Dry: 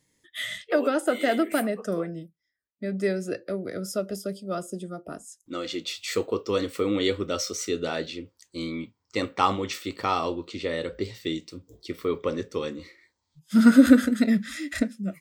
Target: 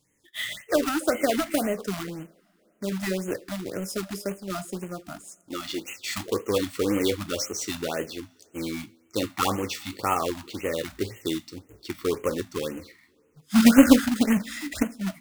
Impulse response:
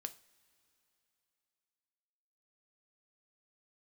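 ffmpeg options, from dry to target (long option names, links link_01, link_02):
-filter_complex "[0:a]acrusher=bits=2:mode=log:mix=0:aa=0.000001,asplit=2[link_01][link_02];[1:a]atrim=start_sample=2205[link_03];[link_02][link_03]afir=irnorm=-1:irlink=0,volume=4dB[link_04];[link_01][link_04]amix=inputs=2:normalize=0,afftfilt=real='re*(1-between(b*sr/1024,400*pow(4500/400,0.5+0.5*sin(2*PI*1.9*pts/sr))/1.41,400*pow(4500/400,0.5+0.5*sin(2*PI*1.9*pts/sr))*1.41))':imag='im*(1-between(b*sr/1024,400*pow(4500/400,0.5+0.5*sin(2*PI*1.9*pts/sr))/1.41,400*pow(4500/400,0.5+0.5*sin(2*PI*1.9*pts/sr))*1.41))':win_size=1024:overlap=0.75,volume=-6dB"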